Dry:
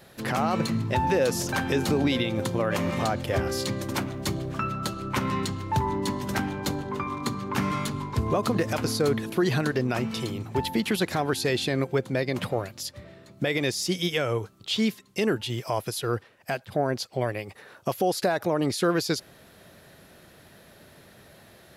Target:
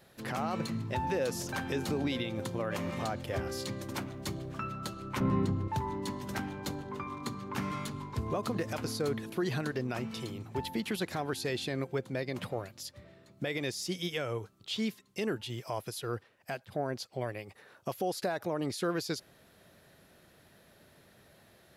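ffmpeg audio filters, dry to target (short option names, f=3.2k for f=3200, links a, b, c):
-filter_complex "[0:a]asettb=1/sr,asplit=3[a][b][c];[a]atrim=end=5.204[d];[b]atrim=start=5.2:end=5.68,asetpts=PTS-STARTPTS,afade=t=in:d=0.004:c=qsin,afade=t=out:st=0.476:d=0.004:c=qsin,tiltshelf=f=1.3k:g=10[e];[c]atrim=start=5.676[f];[d][e]acrossfade=d=0.004:c1=hsin:c2=qsin[g];[g][f]acrossfade=d=0.004:c1=qsin:c2=hsin,volume=-8.5dB"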